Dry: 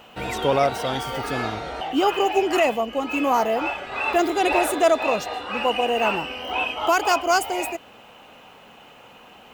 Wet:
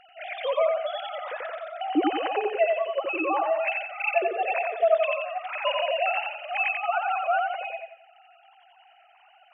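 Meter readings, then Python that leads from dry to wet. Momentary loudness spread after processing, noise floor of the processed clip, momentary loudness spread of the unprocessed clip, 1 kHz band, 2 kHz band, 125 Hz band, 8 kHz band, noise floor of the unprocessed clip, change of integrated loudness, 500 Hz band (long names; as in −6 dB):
10 LU, −57 dBFS, 8 LU, −5.0 dB, −3.0 dB, below −35 dB, below −40 dB, −48 dBFS, −4.0 dB, −3.0 dB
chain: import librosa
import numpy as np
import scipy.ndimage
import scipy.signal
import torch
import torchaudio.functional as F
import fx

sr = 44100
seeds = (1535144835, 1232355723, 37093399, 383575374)

p1 = fx.sine_speech(x, sr)
p2 = fx.rider(p1, sr, range_db=4, speed_s=0.5)
p3 = p2 + fx.echo_feedback(p2, sr, ms=89, feedback_pct=37, wet_db=-3.5, dry=0)
y = p3 * librosa.db_to_amplitude(-5.5)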